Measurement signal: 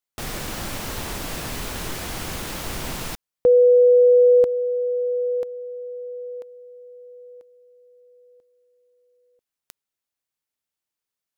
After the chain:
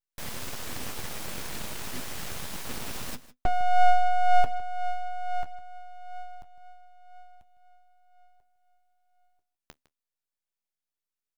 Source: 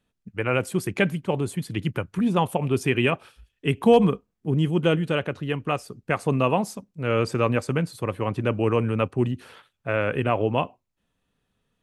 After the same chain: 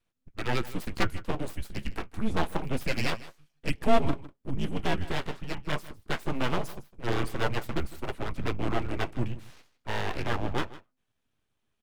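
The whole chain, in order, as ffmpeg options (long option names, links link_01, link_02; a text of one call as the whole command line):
ffmpeg -i in.wav -filter_complex "[0:a]flanger=delay=6:depth=7.8:regen=45:speed=0.26:shape=triangular,afreqshift=-130,aeval=exprs='abs(val(0))':channel_layout=same,asplit=2[link_01][link_02];[link_02]aecho=0:1:156:0.133[link_03];[link_01][link_03]amix=inputs=2:normalize=0" out.wav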